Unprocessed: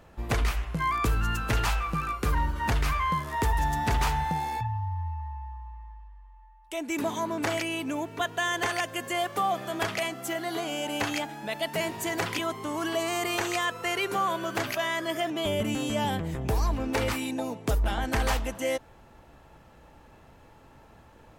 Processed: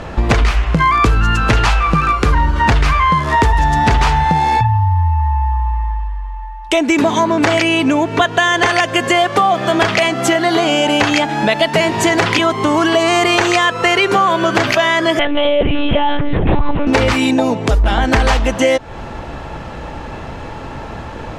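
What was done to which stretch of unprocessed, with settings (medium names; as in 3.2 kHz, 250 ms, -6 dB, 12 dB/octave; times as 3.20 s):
15.19–16.87 s: monotone LPC vocoder at 8 kHz 290 Hz
whole clip: low-pass 5.7 kHz 12 dB/octave; compression 4:1, threshold -38 dBFS; loudness maximiser +27 dB; trim -1 dB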